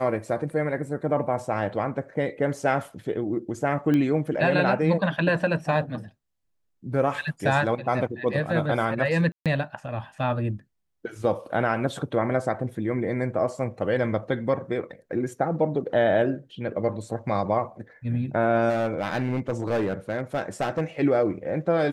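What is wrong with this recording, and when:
3.94 s: pop -15 dBFS
9.32–9.46 s: dropout 137 ms
18.69–20.82 s: clipped -20.5 dBFS

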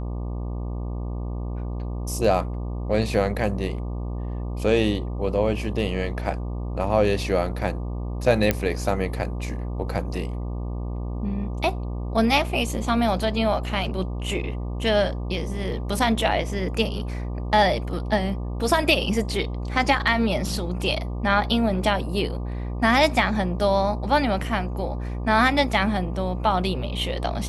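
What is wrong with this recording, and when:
buzz 60 Hz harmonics 20 -29 dBFS
8.51 s: pop -6 dBFS

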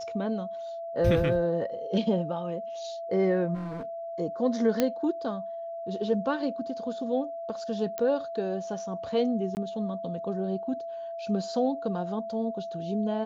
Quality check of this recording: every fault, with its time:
whine 670 Hz -34 dBFS
3.54–3.85 s: clipped -32.5 dBFS
4.80 s: pop -10 dBFS
7.98 s: pop -18 dBFS
9.55–9.57 s: dropout 19 ms

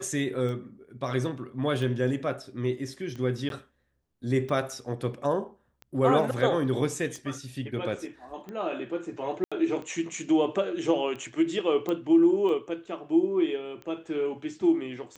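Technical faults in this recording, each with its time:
tick 45 rpm -27 dBFS
3.49–3.50 s: dropout 12 ms
9.44–9.52 s: dropout 76 ms
11.89 s: pop -18 dBFS

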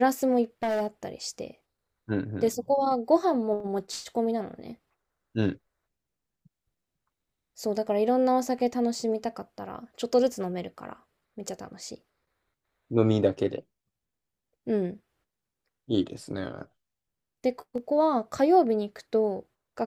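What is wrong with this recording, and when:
0.63–0.87 s: clipped -23.5 dBFS
3.60 s: dropout 2.7 ms

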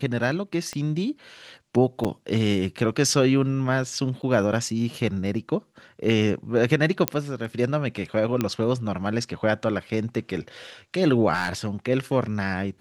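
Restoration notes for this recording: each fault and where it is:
0.73 s: pop -18 dBFS
2.04–2.05 s: dropout 7.4 ms
4.22–4.23 s: dropout 9.1 ms
7.08 s: pop -3 dBFS
8.41 s: pop -10 dBFS
11.33–11.67 s: clipped -17.5 dBFS

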